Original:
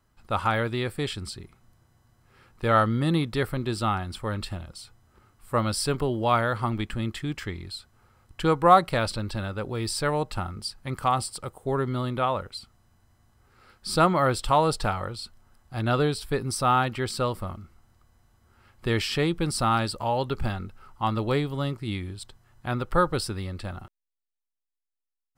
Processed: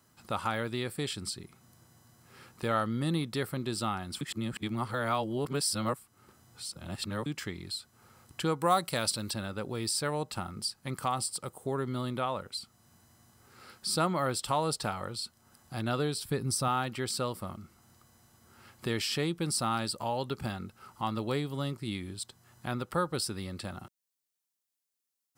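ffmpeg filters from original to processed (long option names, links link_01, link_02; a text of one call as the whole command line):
ffmpeg -i in.wav -filter_complex "[0:a]asettb=1/sr,asplit=3[link_01][link_02][link_03];[link_01]atrim=end=8.614[link_04];[link_02]atrim=start=8.61:end=9.34,asetpts=PTS-STARTPTS,afade=type=in:duration=0.004:curve=qsin,afade=type=out:start_time=0.726:duration=0.004:curve=qsin,highshelf=frequency=4200:gain=10[link_05];[link_03]atrim=start=9.336[link_06];[link_04][link_05]acrossfade=duration=0.004:curve1=hsin:curve2=qsin[link_07];[link_07][link_06]acrossfade=duration=0.004:curve1=qsin:curve2=hsin,asettb=1/sr,asplit=3[link_08][link_09][link_10];[link_08]atrim=end=16.254[link_11];[link_09]atrim=start=16.25:end=16.68,asetpts=PTS-STARTPTS,afade=type=in:duration=0.004:curve=qsin,afade=type=out:start_time=0.426:duration=0.004:curve=qsin,lowshelf=frequency=130:gain=11.5[link_12];[link_10]atrim=start=16.676[link_13];[link_11][link_12]acrossfade=duration=0.004:curve1=hsin:curve2=qsin[link_14];[link_14][link_13]acrossfade=duration=0.004:curve1=qsin:curve2=hsin,asplit=3[link_15][link_16][link_17];[link_15]atrim=end=4.212[link_18];[link_16]atrim=start=4.208:end=7.262,asetpts=PTS-STARTPTS,areverse[link_19];[link_17]atrim=start=7.258[link_20];[link_18][link_19]acrossfade=duration=0.004:curve1=hsin:curve2=hsin[link_21];[link_21][link_20]acrossfade=duration=0.004:curve1=hsin:curve2=hsin,highpass=160,bass=frequency=250:gain=5,treble=frequency=4000:gain=8,acompressor=threshold=-50dB:ratio=1.5,volume=3dB" out.wav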